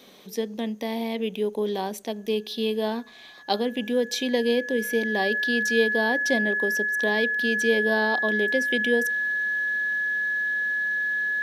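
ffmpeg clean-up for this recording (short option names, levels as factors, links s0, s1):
-af "bandreject=f=1700:w=30"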